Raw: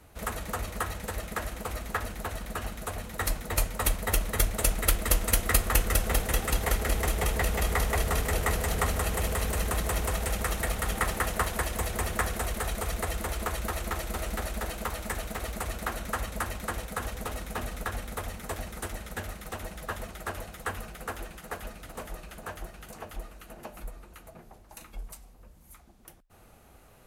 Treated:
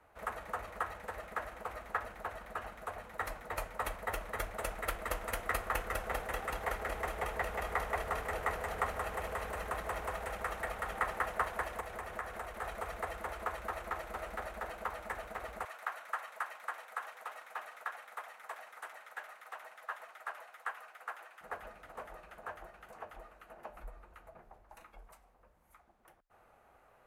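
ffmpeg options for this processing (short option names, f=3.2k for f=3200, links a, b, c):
-filter_complex "[0:a]asettb=1/sr,asplit=3[a][b][c];[a]atrim=end=11.804[d];[b]atrim=start=11.8:end=12.62,asetpts=PTS-STARTPTS,afade=t=in:d=0.004:c=qsin,afade=t=out:st=0.816:d=0.004:c=qsin,acompressor=threshold=-30dB:ratio=4:attack=3.2:release=140:knee=1:detection=peak[e];[c]atrim=start=12.616[f];[d][e]acrossfade=d=0.004:c1=hsin:c2=qsin[g];[g][f]acrossfade=d=0.004:c1=qsin:c2=hsin,asettb=1/sr,asplit=3[h][i][j];[h]atrim=end=15.654[k];[i]atrim=start=15.65:end=21.41,asetpts=PTS-STARTPTS,afade=t=in:d=0.004:c=qsin,afade=t=out:st=5.756:d=0.004:c=qsin,highpass=870[l];[j]atrim=start=21.406[m];[k][l]acrossfade=d=0.004:c1=hsin:c2=qsin[n];[n][m]acrossfade=d=0.004:c1=qsin:c2=hsin,asettb=1/sr,asplit=3[o][p][q];[o]atrim=end=23.684[r];[p]atrim=start=23.68:end=24.82,asetpts=PTS-STARTPTS,afade=t=in:d=0.004:c=qsin,afade=t=out:st=1.136:d=0.004:c=qsin,lowshelf=f=98:g=10.5[s];[q]atrim=start=24.816[t];[r][s]acrossfade=d=0.004:c1=hsin:c2=qsin[u];[u][t]acrossfade=d=0.004:c1=qsin:c2=hsin,acrossover=split=500 2100:gain=0.178 1 0.141[v][w][x];[v][w][x]amix=inputs=3:normalize=0,volume=-2dB"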